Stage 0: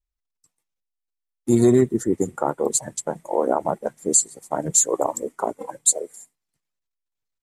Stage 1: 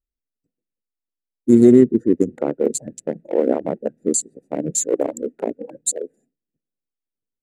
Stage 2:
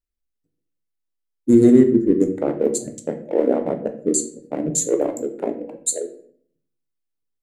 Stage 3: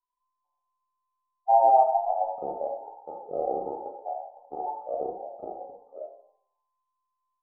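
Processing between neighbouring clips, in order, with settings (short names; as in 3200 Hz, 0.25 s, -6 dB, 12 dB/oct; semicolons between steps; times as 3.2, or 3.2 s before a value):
Wiener smoothing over 41 samples; graphic EQ 250/500/1000/2000 Hz +11/+9/-11/+7 dB; gain -4 dB
shoebox room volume 73 m³, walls mixed, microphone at 0.41 m; gain -1 dB
band inversion scrambler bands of 1000 Hz; harmonic-percussive split percussive -13 dB; rippled Chebyshev low-pass 1300 Hz, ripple 6 dB; gain -2 dB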